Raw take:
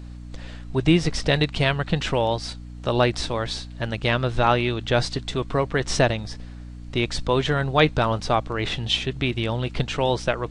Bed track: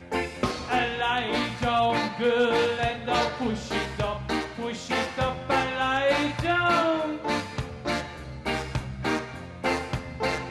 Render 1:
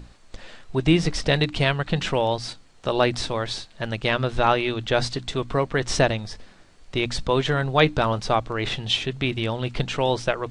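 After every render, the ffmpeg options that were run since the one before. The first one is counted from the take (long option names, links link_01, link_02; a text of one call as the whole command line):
ffmpeg -i in.wav -af "bandreject=frequency=60:width_type=h:width=6,bandreject=frequency=120:width_type=h:width=6,bandreject=frequency=180:width_type=h:width=6,bandreject=frequency=240:width_type=h:width=6,bandreject=frequency=300:width_type=h:width=6" out.wav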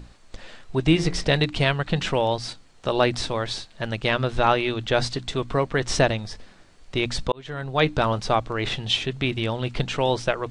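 ffmpeg -i in.wav -filter_complex "[0:a]asettb=1/sr,asplit=3[link_01][link_02][link_03];[link_01]atrim=end=0.854[link_04];[link_02]atrim=start=0.85:end=1.25,asetpts=PTS-STARTPTS,afade=type=in:duration=0.004:curve=qsin,afade=type=out:start_time=0.396:duration=0.004:curve=qsin,bandreject=frequency=87.24:width_type=h:width=4,bandreject=frequency=174.48:width_type=h:width=4,bandreject=frequency=261.72:width_type=h:width=4,bandreject=frequency=348.96:width_type=h:width=4,bandreject=frequency=436.2:width_type=h:width=4,bandreject=frequency=523.44:width_type=h:width=4,bandreject=frequency=610.68:width_type=h:width=4,bandreject=frequency=697.92:width_type=h:width=4,bandreject=frequency=785.16:width_type=h:width=4,bandreject=frequency=872.4:width_type=h:width=4,bandreject=frequency=959.64:width_type=h:width=4,bandreject=frequency=1046.88:width_type=h:width=4,bandreject=frequency=1134.12:width_type=h:width=4,bandreject=frequency=1221.36:width_type=h:width=4,bandreject=frequency=1308.6:width_type=h:width=4,bandreject=frequency=1395.84:width_type=h:width=4,bandreject=frequency=1483.08:width_type=h:width=4,bandreject=frequency=1570.32:width_type=h:width=4,bandreject=frequency=1657.56:width_type=h:width=4,bandreject=frequency=1744.8:width_type=h:width=4,bandreject=frequency=1832.04:width_type=h:width=4,bandreject=frequency=1919.28:width_type=h:width=4,bandreject=frequency=2006.52:width_type=h:width=4,bandreject=frequency=2093.76:width_type=h:width=4,bandreject=frequency=2181:width_type=h:width=4,bandreject=frequency=2268.24:width_type=h:width=4,bandreject=frequency=2355.48:width_type=h:width=4,bandreject=frequency=2442.72:width_type=h:width=4,bandreject=frequency=2529.96:width_type=h:width=4[link_05];[link_03]atrim=start=1.246[link_06];[link_04][link_05]acrossfade=duration=0.004:curve1=hsin:curve2=qsin[link_07];[link_07][link_06]acrossfade=duration=0.004:curve1=qsin:curve2=hsin,asplit=2[link_08][link_09];[link_08]atrim=end=7.32,asetpts=PTS-STARTPTS,afade=type=out:start_time=7.316:duration=0.004:curve=hsin[link_10];[link_09]atrim=start=7.32,asetpts=PTS-STARTPTS,afade=type=in:duration=0.68[link_11];[link_10][link_11]concat=n=2:v=0:a=1" out.wav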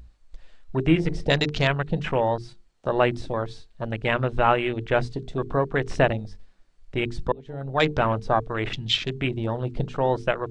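ffmpeg -i in.wav -af "afwtdn=0.0316,bandreject=frequency=50:width_type=h:width=6,bandreject=frequency=100:width_type=h:width=6,bandreject=frequency=150:width_type=h:width=6,bandreject=frequency=200:width_type=h:width=6,bandreject=frequency=250:width_type=h:width=6,bandreject=frequency=300:width_type=h:width=6,bandreject=frequency=350:width_type=h:width=6,bandreject=frequency=400:width_type=h:width=6,bandreject=frequency=450:width_type=h:width=6" out.wav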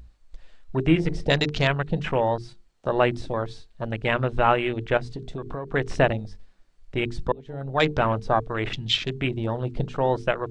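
ffmpeg -i in.wav -filter_complex "[0:a]asettb=1/sr,asplit=3[link_01][link_02][link_03];[link_01]atrim=end=4.974[link_04];[link_02]atrim=start=4.97:end=5.68,asetpts=PTS-STARTPTS,afade=type=in:duration=0.004:curve=qsin,afade=type=out:start_time=0.706:duration=0.004:curve=qsin,acompressor=threshold=-28dB:ratio=6:attack=3.2:release=140:knee=1:detection=peak[link_05];[link_03]atrim=start=5.676[link_06];[link_04][link_05]acrossfade=duration=0.004:curve1=hsin:curve2=qsin[link_07];[link_07][link_06]acrossfade=duration=0.004:curve1=qsin:curve2=hsin" out.wav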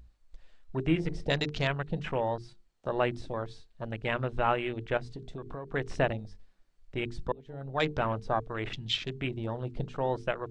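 ffmpeg -i in.wav -af "volume=-7.5dB" out.wav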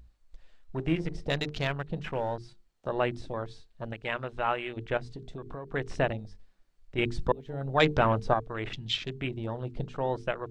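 ffmpeg -i in.wav -filter_complex "[0:a]asettb=1/sr,asplit=3[link_01][link_02][link_03];[link_01]atrim=end=0.764[link_04];[link_02]atrim=start=0.76:end=2.38,asetpts=PTS-STARTPTS,afade=type=in:duration=0.004:curve=qsin,afade=type=out:start_time=1.616:duration=0.004:curve=qsin,aeval=exprs='if(lt(val(0),0),0.708*val(0),val(0))':channel_layout=same[link_05];[link_03]atrim=start=2.376[link_06];[link_04][link_05]acrossfade=duration=0.004:curve1=hsin:curve2=qsin[link_07];[link_07][link_06]acrossfade=duration=0.004:curve1=qsin:curve2=hsin,asettb=1/sr,asplit=3[link_08][link_09][link_10];[link_08]atrim=end=3.934[link_11];[link_09]atrim=start=3.93:end=4.77,asetpts=PTS-STARTPTS,afade=type=in:duration=0.004:curve=qsin,afade=type=out:start_time=0.836:duration=0.004:curve=qsin,lowshelf=frequency=380:gain=-8.5[link_12];[link_10]atrim=start=4.766[link_13];[link_11][link_12]acrossfade=duration=0.004:curve1=hsin:curve2=qsin[link_14];[link_14][link_13]acrossfade=duration=0.004:curve1=qsin:curve2=hsin,asettb=1/sr,asplit=3[link_15][link_16][link_17];[link_15]atrim=end=6.984[link_18];[link_16]atrim=start=6.98:end=8.34,asetpts=PTS-STARTPTS,afade=type=in:duration=0.004:curve=qsin,afade=type=out:start_time=1.356:duration=0.004:curve=qsin,acontrast=49[link_19];[link_17]atrim=start=8.336[link_20];[link_18][link_19]acrossfade=duration=0.004:curve1=hsin:curve2=qsin[link_21];[link_21][link_20]acrossfade=duration=0.004:curve1=qsin:curve2=hsin" out.wav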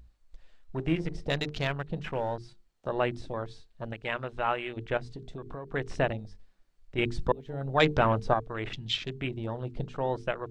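ffmpeg -i in.wav -af anull out.wav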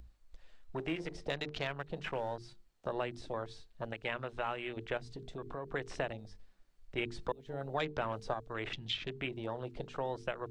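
ffmpeg -i in.wav -filter_complex "[0:a]acrossover=split=340|3800[link_01][link_02][link_03];[link_01]acompressor=threshold=-46dB:ratio=4[link_04];[link_02]acompressor=threshold=-35dB:ratio=4[link_05];[link_03]acompressor=threshold=-52dB:ratio=4[link_06];[link_04][link_05][link_06]amix=inputs=3:normalize=0" out.wav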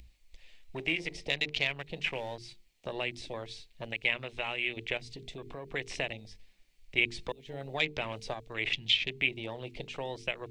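ffmpeg -i in.wav -af "highshelf=frequency=1800:width_type=q:width=3:gain=7.5" out.wav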